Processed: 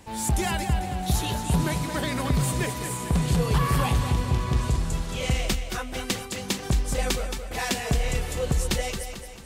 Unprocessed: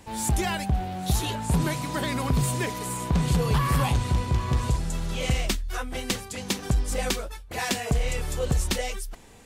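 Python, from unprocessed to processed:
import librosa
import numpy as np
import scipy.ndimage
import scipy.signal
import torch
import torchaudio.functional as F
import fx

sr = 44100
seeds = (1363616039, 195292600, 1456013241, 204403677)

y = fx.echo_feedback(x, sr, ms=222, feedback_pct=48, wet_db=-8.5)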